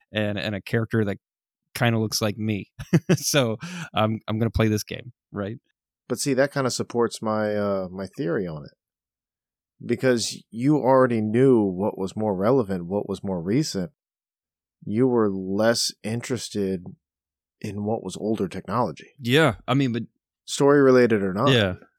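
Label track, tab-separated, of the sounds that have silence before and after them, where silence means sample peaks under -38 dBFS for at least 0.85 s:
9.810000	13.870000	sound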